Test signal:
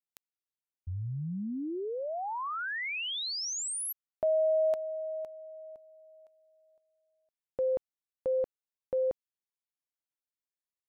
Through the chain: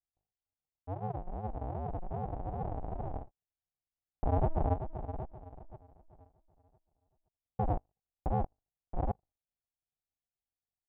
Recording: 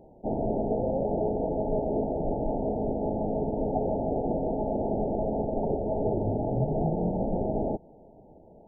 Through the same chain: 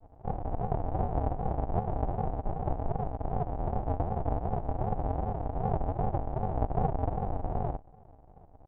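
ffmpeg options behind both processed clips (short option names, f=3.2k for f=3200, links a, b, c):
-af "bandreject=f=50:t=h:w=6,bandreject=f=100:t=h:w=6,bandreject=f=150:t=h:w=6,bandreject=f=200:t=h:w=6,aresample=8000,acrusher=samples=35:mix=1:aa=0.000001:lfo=1:lforange=21:lforate=2.6,aresample=44100,lowpass=f=760:t=q:w=5.1,volume=-3dB"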